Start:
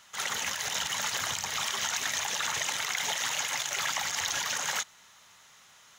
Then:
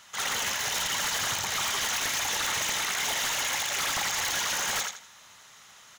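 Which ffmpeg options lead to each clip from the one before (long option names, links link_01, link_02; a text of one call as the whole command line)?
ffmpeg -i in.wav -af "aecho=1:1:82|164|246|328:0.473|0.132|0.0371|0.0104,aeval=exprs='0.0473*(abs(mod(val(0)/0.0473+3,4)-2)-1)':channel_layout=same,volume=3.5dB" out.wav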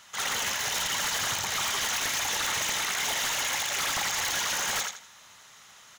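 ffmpeg -i in.wav -af anull out.wav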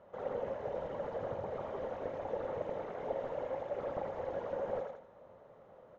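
ffmpeg -i in.wav -af "alimiter=level_in=5dB:limit=-24dB:level=0:latency=1:release=12,volume=-5dB,lowpass=frequency=530:width_type=q:width=5.9,volume=2dB" out.wav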